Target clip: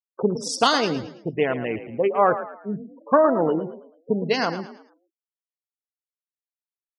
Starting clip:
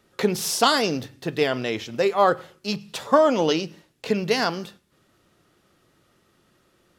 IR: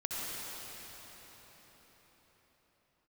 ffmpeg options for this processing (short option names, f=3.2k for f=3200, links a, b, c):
-filter_complex "[0:a]afwtdn=0.0316,afftfilt=real='re*gte(hypot(re,im),0.0398)':imag='im*gte(hypot(re,im),0.0398)':win_size=1024:overlap=0.75,asplit=2[a][b];[b]asplit=4[c][d][e][f];[c]adelay=110,afreqshift=39,volume=-12dB[g];[d]adelay=220,afreqshift=78,volume=-20.9dB[h];[e]adelay=330,afreqshift=117,volume=-29.7dB[i];[f]adelay=440,afreqshift=156,volume=-38.6dB[j];[g][h][i][j]amix=inputs=4:normalize=0[k];[a][k]amix=inputs=2:normalize=0"